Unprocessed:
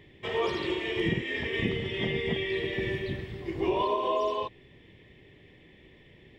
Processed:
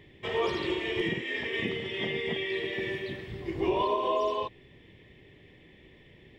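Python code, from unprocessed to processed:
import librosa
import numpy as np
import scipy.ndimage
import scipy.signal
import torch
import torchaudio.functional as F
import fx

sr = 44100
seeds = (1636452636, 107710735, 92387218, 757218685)

y = fx.highpass(x, sr, hz=290.0, slope=6, at=(1.01, 3.27))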